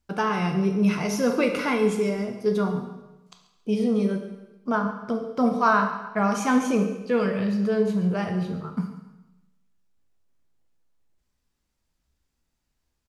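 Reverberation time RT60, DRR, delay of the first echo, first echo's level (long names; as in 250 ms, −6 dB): 1.0 s, 3.5 dB, 137 ms, −17.0 dB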